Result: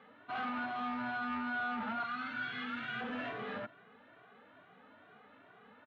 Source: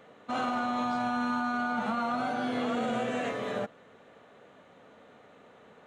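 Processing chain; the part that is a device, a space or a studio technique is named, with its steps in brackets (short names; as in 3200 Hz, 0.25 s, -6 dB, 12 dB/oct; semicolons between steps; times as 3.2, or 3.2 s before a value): 2.03–3.01 EQ curve 100 Hz 0 dB, 680 Hz -16 dB, 1600 Hz +3 dB; barber-pole flanger into a guitar amplifier (endless flanger 2 ms +2.3 Hz; soft clip -34 dBFS, distortion -11 dB; speaker cabinet 93–3600 Hz, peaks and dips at 160 Hz -4 dB, 360 Hz -4 dB, 530 Hz -9 dB, 1500 Hz +5 dB)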